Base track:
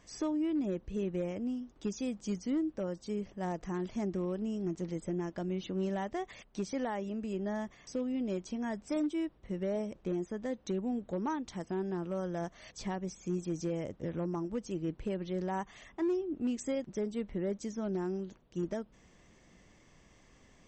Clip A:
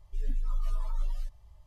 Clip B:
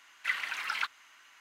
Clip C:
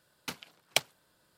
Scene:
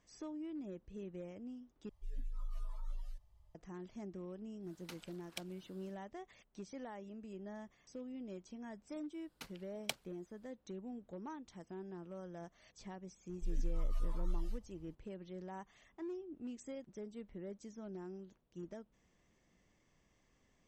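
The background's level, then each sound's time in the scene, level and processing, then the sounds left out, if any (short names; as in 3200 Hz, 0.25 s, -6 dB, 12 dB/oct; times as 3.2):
base track -12.5 dB
1.89 replace with A -12 dB
4.61 add C -1.5 dB, fades 0.10 s + compressor 2:1, threshold -54 dBFS
9.13 add C -12.5 dB
13.29 add A -6 dB
not used: B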